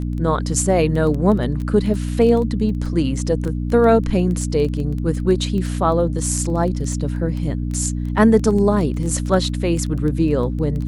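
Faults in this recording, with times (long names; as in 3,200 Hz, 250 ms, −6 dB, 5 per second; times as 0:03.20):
surface crackle 11 per second −24 dBFS
mains hum 60 Hz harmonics 5 −23 dBFS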